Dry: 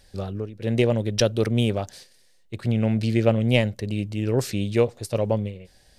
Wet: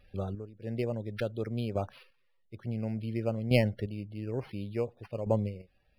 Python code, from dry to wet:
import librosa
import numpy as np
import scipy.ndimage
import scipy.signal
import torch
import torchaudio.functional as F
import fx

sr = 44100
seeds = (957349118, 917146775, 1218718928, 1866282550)

y = fx.spec_topn(x, sr, count=64)
y = fx.chopper(y, sr, hz=0.57, depth_pct=60, duty_pct=20)
y = np.interp(np.arange(len(y)), np.arange(len(y))[::6], y[::6])
y = y * 10.0 ** (-4.0 / 20.0)